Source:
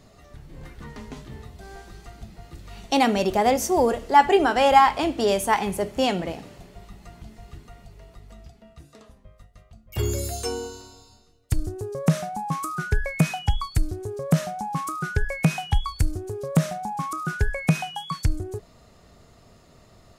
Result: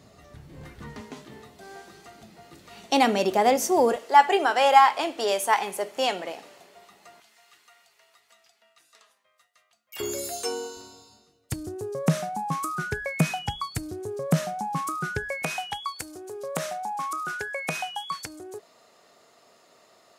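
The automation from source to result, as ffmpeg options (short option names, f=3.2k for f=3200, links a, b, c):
-af "asetnsamples=n=441:p=0,asendcmd='1.01 highpass f 230;3.96 highpass f 510;7.2 highpass f 1300;10 highpass f 340;10.77 highpass f 160;15.42 highpass f 460',highpass=75"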